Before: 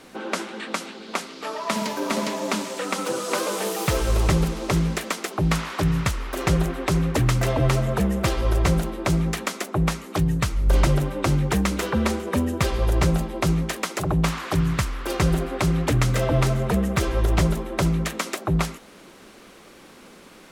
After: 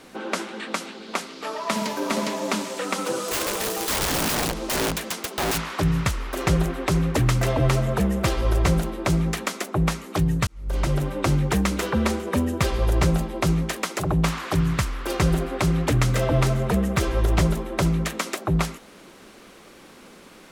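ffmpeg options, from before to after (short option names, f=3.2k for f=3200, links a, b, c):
-filter_complex "[0:a]asettb=1/sr,asplit=3[a][b][c];[a]atrim=end=3.244[d];[b]atrim=start=3.24:end=5.59,asetpts=PTS-STARTPTS,afade=t=in:d=0.004:c=qsin,afade=t=out:st=2.346:d=0.004:c=qsin,aeval=exprs='(mod(9.44*val(0)+1,2)-1)/9.44':c=same[e];[c]atrim=start=5.586[f];[d][e]acrossfade=d=0.004:c1=hsin:c2=qsin[g];[g][f]acrossfade=d=0.004:c1=qsin:c2=hsin,asplit=2[h][i];[h]atrim=end=10.47,asetpts=PTS-STARTPTS,afade=t=out:st=10.466:d=0.004:c=hsin[j];[i]atrim=start=10.47,asetpts=PTS-STARTPTS,afade=t=in:d=0.65[k];[j][k]concat=n=2:v=0:a=1"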